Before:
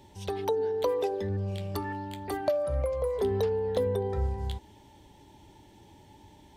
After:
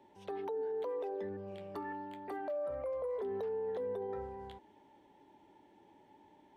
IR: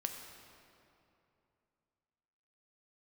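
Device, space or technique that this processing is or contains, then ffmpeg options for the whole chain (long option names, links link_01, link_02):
DJ mixer with the lows and highs turned down: -filter_complex "[0:a]acrossover=split=210 2400:gain=0.0891 1 0.158[link_01][link_02][link_03];[link_01][link_02][link_03]amix=inputs=3:normalize=0,alimiter=level_in=3dB:limit=-24dB:level=0:latency=1:release=36,volume=-3dB,volume=-5dB"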